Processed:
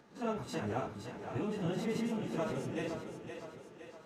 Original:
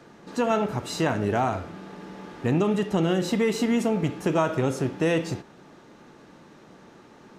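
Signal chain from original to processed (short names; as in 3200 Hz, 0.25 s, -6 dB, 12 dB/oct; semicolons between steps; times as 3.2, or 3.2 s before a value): stepped spectrum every 0.1 s; plain phase-vocoder stretch 0.55×; split-band echo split 340 Hz, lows 0.297 s, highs 0.515 s, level -7.5 dB; gain -7.5 dB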